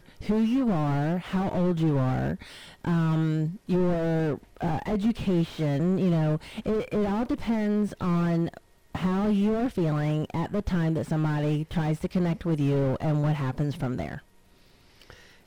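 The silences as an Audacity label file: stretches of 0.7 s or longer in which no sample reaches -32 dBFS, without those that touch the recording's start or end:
14.180000	15.100000	silence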